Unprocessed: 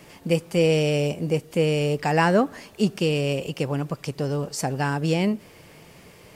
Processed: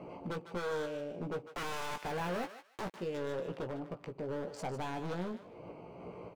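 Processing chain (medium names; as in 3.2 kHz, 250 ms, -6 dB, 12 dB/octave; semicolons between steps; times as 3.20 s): local Wiener filter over 25 samples; compression 2:1, threshold -46 dBFS, peak gain reduction 16.5 dB; 1.47–2.94 s: companded quantiser 2-bit; overdrive pedal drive 18 dB, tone 1.2 kHz, clips at -24 dBFS; random-step tremolo; wavefolder -33 dBFS; doubling 17 ms -6 dB; thinning echo 151 ms, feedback 24%, high-pass 1 kHz, level -9 dB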